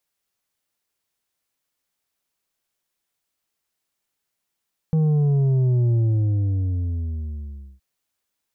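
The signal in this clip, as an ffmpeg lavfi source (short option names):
-f lavfi -i "aevalsrc='0.15*clip((2.87-t)/1.86,0,1)*tanh(2*sin(2*PI*160*2.87/log(65/160)*(exp(log(65/160)*t/2.87)-1)))/tanh(2)':d=2.87:s=44100"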